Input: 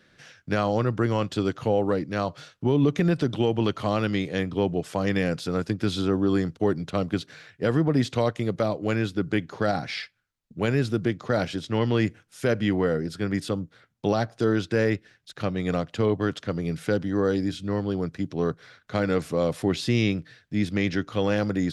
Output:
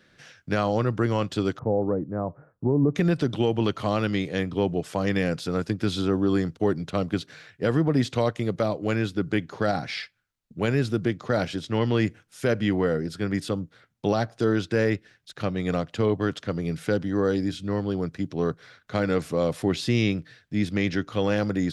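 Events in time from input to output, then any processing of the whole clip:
1.59–2.95 Gaussian blur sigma 8 samples

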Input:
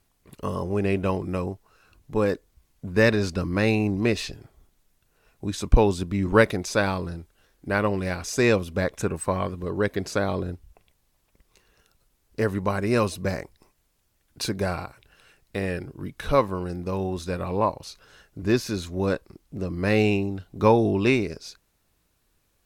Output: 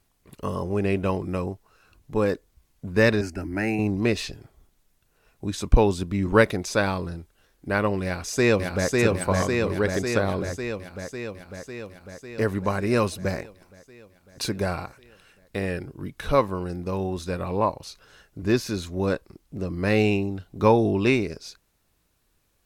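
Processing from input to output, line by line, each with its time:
3.21–3.79 fixed phaser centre 740 Hz, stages 8
8.04–8.92 echo throw 0.55 s, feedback 70%, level -1.5 dB

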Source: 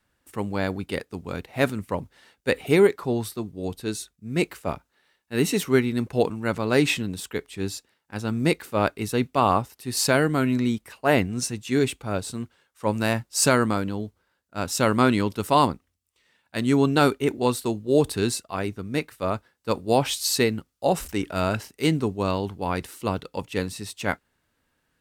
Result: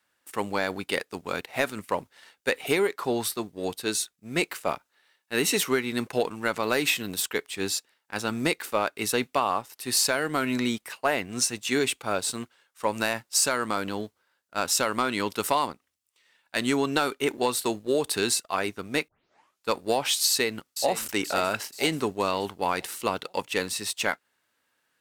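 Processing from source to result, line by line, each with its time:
6.63–7.22 bell 14000 Hz +12 dB 0.35 oct
19.08 tape start 0.61 s
20.28–21.05 echo throw 0.48 s, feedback 50%, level -13 dB
whole clip: HPF 780 Hz 6 dB/oct; compressor 10:1, threshold -27 dBFS; sample leveller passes 1; gain +3.5 dB

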